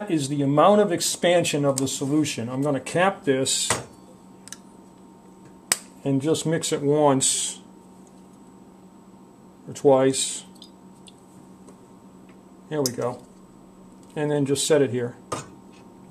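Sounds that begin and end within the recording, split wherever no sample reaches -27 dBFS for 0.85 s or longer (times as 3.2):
5.72–7.53
9.69–10.39
12.71–13.13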